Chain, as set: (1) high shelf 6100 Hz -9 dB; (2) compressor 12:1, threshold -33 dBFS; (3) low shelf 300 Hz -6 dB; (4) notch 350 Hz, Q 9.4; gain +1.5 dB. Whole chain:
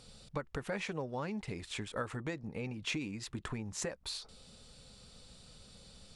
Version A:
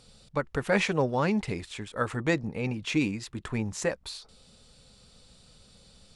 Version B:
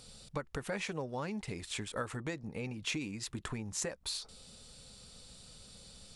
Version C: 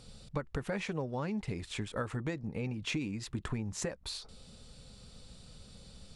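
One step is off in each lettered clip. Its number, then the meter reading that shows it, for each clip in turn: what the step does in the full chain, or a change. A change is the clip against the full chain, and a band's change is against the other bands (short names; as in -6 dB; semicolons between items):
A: 2, mean gain reduction 5.0 dB; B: 1, 8 kHz band +4.0 dB; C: 3, 125 Hz band +4.5 dB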